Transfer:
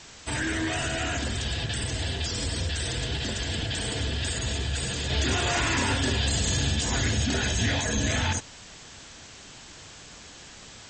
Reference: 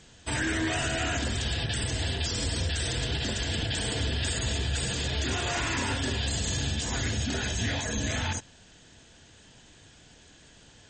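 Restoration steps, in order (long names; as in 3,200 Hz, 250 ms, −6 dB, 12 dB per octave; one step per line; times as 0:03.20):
noise reduction from a noise print 8 dB
level correction −4 dB, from 0:05.10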